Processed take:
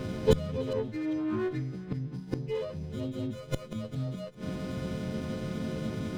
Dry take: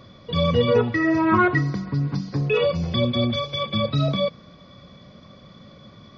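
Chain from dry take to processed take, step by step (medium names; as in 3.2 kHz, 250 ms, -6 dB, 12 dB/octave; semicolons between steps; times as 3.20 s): partials quantised in pitch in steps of 3 st; resonant low shelf 590 Hz +10.5 dB, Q 1.5; inverted gate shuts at -13 dBFS, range -26 dB; on a send: thinning echo 400 ms, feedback 31%, high-pass 460 Hz, level -18 dB; on the sum: sliding maximum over 9 samples; trim +4 dB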